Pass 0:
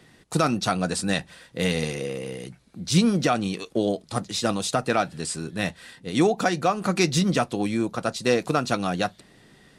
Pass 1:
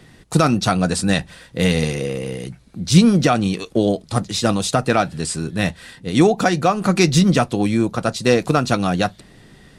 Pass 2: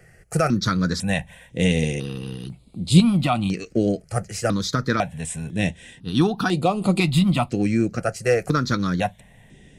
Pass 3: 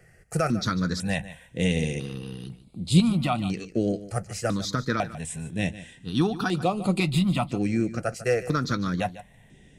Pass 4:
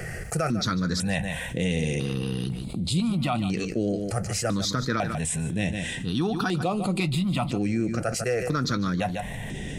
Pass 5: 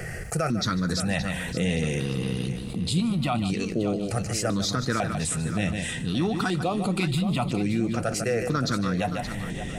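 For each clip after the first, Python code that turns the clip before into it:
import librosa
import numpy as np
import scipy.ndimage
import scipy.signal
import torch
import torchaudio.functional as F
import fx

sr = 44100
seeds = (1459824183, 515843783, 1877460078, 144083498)

y1 = fx.low_shelf(x, sr, hz=120.0, db=10.5)
y1 = y1 * librosa.db_to_amplitude(5.0)
y2 = fx.phaser_held(y1, sr, hz=2.0, low_hz=1000.0, high_hz=5800.0)
y2 = y2 * librosa.db_to_amplitude(-1.5)
y3 = y2 + 10.0 ** (-15.5 / 20.0) * np.pad(y2, (int(148 * sr / 1000.0), 0))[:len(y2)]
y3 = y3 * librosa.db_to_amplitude(-4.5)
y4 = fx.env_flatten(y3, sr, amount_pct=70)
y4 = y4 * librosa.db_to_amplitude(-8.5)
y5 = fx.echo_feedback(y4, sr, ms=573, feedback_pct=28, wet_db=-11)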